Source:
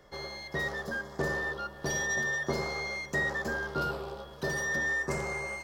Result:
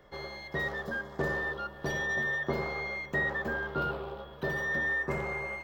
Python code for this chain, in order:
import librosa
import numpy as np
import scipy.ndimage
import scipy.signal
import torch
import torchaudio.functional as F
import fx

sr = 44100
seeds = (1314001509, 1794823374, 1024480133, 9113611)

y = fx.band_shelf(x, sr, hz=7500.0, db=fx.steps((0.0, -9.0), (1.9, -15.5)), octaves=1.7)